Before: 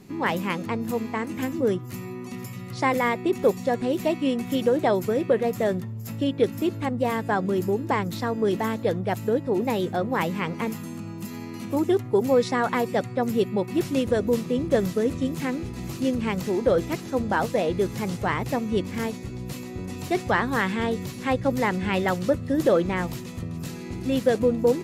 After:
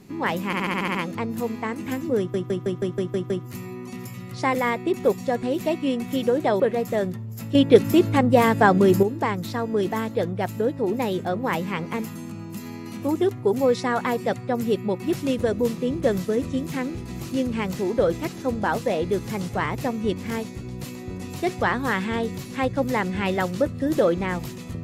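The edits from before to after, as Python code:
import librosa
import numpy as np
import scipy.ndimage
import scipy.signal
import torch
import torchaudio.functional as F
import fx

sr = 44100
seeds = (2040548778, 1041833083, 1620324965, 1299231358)

y = fx.edit(x, sr, fx.stutter(start_s=0.46, slice_s=0.07, count=8),
    fx.stutter(start_s=1.69, slice_s=0.16, count=8),
    fx.cut(start_s=4.99, length_s=0.29),
    fx.clip_gain(start_s=6.23, length_s=1.48, db=8.0), tone=tone)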